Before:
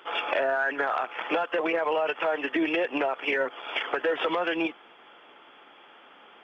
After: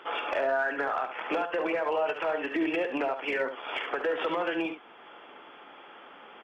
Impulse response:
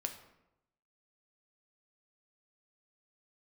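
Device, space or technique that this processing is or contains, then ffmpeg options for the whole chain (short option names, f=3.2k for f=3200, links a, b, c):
clipper into limiter: -af "asoftclip=type=hard:threshold=-19dB,alimiter=level_in=1dB:limit=-24dB:level=0:latency=1:release=427,volume=-1dB,highshelf=f=4k:g=-10,aecho=1:1:52|71:0.158|0.376,volume=3.5dB"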